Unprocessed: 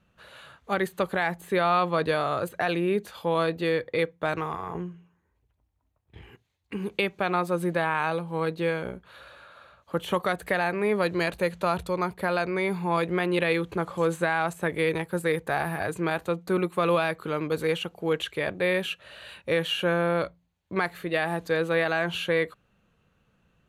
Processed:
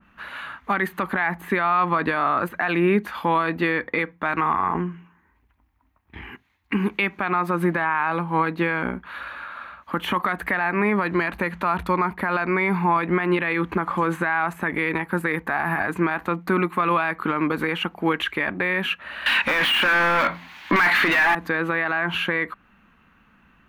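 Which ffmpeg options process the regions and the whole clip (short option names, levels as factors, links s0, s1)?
-filter_complex "[0:a]asettb=1/sr,asplit=3[s0][s1][s2];[s0]atrim=end=19.264[s3];[s1]atrim=start=19.26:end=21.35,asetpts=PTS-STARTPTS,afade=t=in:d=0.004:c=qsin,afade=t=out:st=2.086:d=0.004:c=qsin,equalizer=f=4000:t=o:w=2.1:g=10,asplit=2[s4][s5];[s5]highpass=f=720:p=1,volume=50.1,asoftclip=type=tanh:threshold=0.398[s6];[s4][s6]amix=inputs=2:normalize=0,lowpass=f=6200:p=1,volume=0.501[s7];[s2]atrim=start=21.346[s8];[s3][s7]acrossfade=d=0.004:c1=hsin:c2=qsin[s9];[s9][s8]acrossfade=d=0.004:c1=qsin:c2=hsin,equalizer=f=125:t=o:w=1:g=-10,equalizer=f=250:t=o:w=1:g=9,equalizer=f=500:t=o:w=1:g=-11,equalizer=f=1000:t=o:w=1:g=7,equalizer=f=2000:t=o:w=1:g=8,equalizer=f=4000:t=o:w=1:g=-4,equalizer=f=8000:t=o:w=1:g=-10,alimiter=limit=0.106:level=0:latency=1:release=88,adynamicequalizer=threshold=0.00794:dfrequency=1900:dqfactor=0.7:tfrequency=1900:tqfactor=0.7:attack=5:release=100:ratio=0.375:range=2.5:mode=cutabove:tftype=highshelf,volume=2.82"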